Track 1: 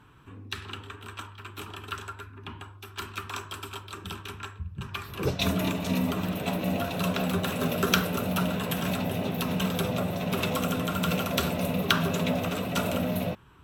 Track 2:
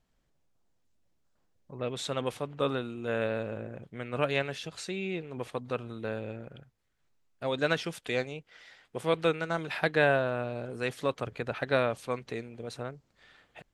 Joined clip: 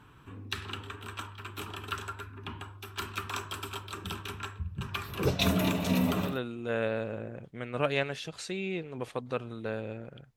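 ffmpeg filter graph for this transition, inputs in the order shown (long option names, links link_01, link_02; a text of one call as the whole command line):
ffmpeg -i cue0.wav -i cue1.wav -filter_complex "[0:a]apad=whole_dur=10.36,atrim=end=10.36,atrim=end=6.4,asetpts=PTS-STARTPTS[link_01];[1:a]atrim=start=2.59:end=6.75,asetpts=PTS-STARTPTS[link_02];[link_01][link_02]acrossfade=duration=0.2:curve1=tri:curve2=tri" out.wav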